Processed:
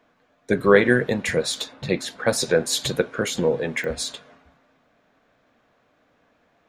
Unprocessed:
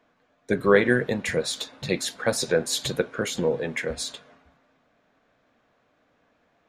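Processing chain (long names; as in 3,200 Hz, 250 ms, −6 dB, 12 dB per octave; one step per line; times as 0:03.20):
0:01.73–0:02.27: high-shelf EQ 4,000 Hz −9.5 dB
digital clicks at 0:03.84, −23 dBFS
level +3 dB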